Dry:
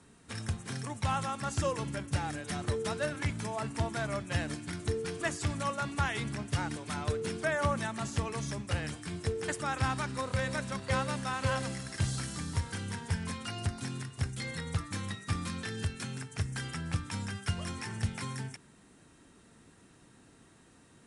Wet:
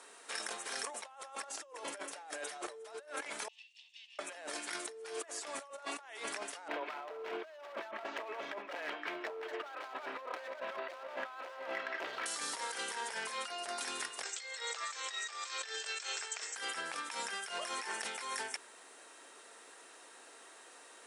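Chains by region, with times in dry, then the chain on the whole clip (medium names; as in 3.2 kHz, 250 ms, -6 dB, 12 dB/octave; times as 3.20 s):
3.48–4.19 s: comb filter that takes the minimum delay 1.1 ms + elliptic high-pass 2.8 kHz, stop band 50 dB + tape spacing loss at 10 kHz 44 dB
6.68–12.26 s: low-pass 2.8 kHz 24 dB/octave + hard clipper -34.5 dBFS + comb 3.1 ms, depth 30%
14.23–16.56 s: brick-wall FIR band-pass 320–8300 Hz + tilt EQ +2.5 dB/octave
whole clip: high-pass 470 Hz 24 dB/octave; dynamic bell 620 Hz, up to +6 dB, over -47 dBFS, Q 1.1; compressor with a negative ratio -46 dBFS, ratio -1; trim +2 dB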